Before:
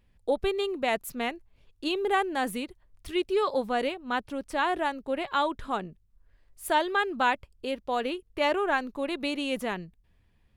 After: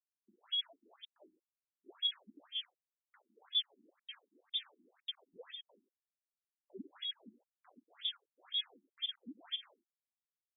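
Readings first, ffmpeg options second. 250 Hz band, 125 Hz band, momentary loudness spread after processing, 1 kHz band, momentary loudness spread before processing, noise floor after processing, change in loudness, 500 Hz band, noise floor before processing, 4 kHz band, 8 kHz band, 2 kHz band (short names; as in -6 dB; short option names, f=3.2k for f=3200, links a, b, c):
-26.5 dB, under -20 dB, 19 LU, -39.5 dB, 8 LU, under -85 dBFS, -10.5 dB, -34.5 dB, -65 dBFS, -0.5 dB, under -35 dB, -29.5 dB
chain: -filter_complex "[0:a]afftfilt=real='real(if(lt(b,272),68*(eq(floor(b/68),0)*2+eq(floor(b/68),1)*3+eq(floor(b/68),2)*0+eq(floor(b/68),3)*1)+mod(b,68),b),0)':imag='imag(if(lt(b,272),68*(eq(floor(b/68),0)*2+eq(floor(b/68),1)*3+eq(floor(b/68),2)*0+eq(floor(b/68),3)*1)+mod(b,68),b),0)':win_size=2048:overlap=0.75,highshelf=f=2.1k:g=-7.5,acrossover=split=300|3100[a][b][c];[b]asoftclip=type=tanh:threshold=-37.5dB[d];[a][d][c]amix=inputs=3:normalize=0,aresample=16000,aresample=44100,afftfilt=real='re*gte(hypot(re,im),0.0562)':imag='im*gte(hypot(re,im),0.0562)':win_size=1024:overlap=0.75,aeval=exprs='val(0)*gte(abs(val(0)),0.0119)':c=same,areverse,acompressor=mode=upward:threshold=-51dB:ratio=2.5,areverse,equalizer=f=80:t=o:w=1.7:g=13.5,aecho=1:1:89:0.282,afftfilt=real='re*between(b*sr/1024,260*pow(2700/260,0.5+0.5*sin(2*PI*2*pts/sr))/1.41,260*pow(2700/260,0.5+0.5*sin(2*PI*2*pts/sr))*1.41)':imag='im*between(b*sr/1024,260*pow(2700/260,0.5+0.5*sin(2*PI*2*pts/sr))/1.41,260*pow(2700/260,0.5+0.5*sin(2*PI*2*pts/sr))*1.41)':win_size=1024:overlap=0.75,volume=2dB"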